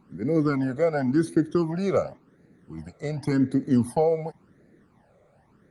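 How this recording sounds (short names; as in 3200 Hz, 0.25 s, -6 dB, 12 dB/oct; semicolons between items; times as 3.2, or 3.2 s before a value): phasing stages 12, 0.91 Hz, lowest notch 280–1000 Hz; Opus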